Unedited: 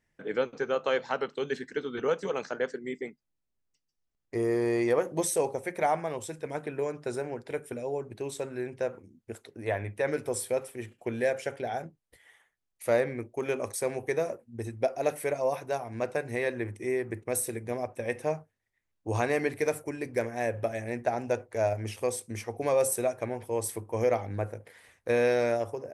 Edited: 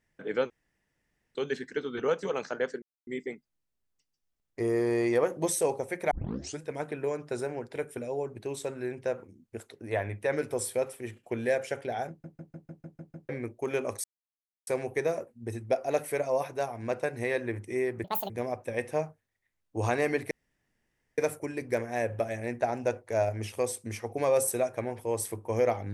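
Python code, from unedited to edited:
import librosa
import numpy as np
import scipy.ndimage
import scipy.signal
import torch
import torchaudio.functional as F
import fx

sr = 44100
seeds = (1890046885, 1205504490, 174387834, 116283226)

y = fx.edit(x, sr, fx.room_tone_fill(start_s=0.5, length_s=0.85),
    fx.insert_silence(at_s=2.82, length_s=0.25),
    fx.tape_start(start_s=5.86, length_s=0.49),
    fx.stutter_over(start_s=11.84, slice_s=0.15, count=8),
    fx.insert_silence(at_s=13.79, length_s=0.63),
    fx.speed_span(start_s=17.16, length_s=0.45, speed=1.74),
    fx.insert_room_tone(at_s=19.62, length_s=0.87), tone=tone)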